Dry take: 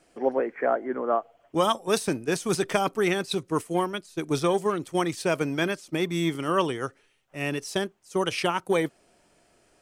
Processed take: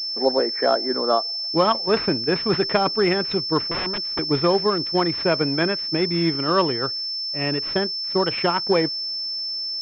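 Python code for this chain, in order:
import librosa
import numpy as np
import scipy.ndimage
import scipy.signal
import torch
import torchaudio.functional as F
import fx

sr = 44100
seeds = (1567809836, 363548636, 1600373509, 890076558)

y = fx.overflow_wrap(x, sr, gain_db=25.5, at=(3.71, 4.19))
y = fx.pwm(y, sr, carrier_hz=5300.0)
y = y * 10.0 ** (4.5 / 20.0)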